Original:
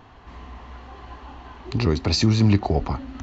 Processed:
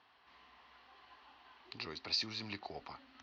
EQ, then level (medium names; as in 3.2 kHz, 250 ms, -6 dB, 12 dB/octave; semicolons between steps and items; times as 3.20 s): band-pass filter 5.3 kHz, Q 2.7; distance through air 390 m; +7.5 dB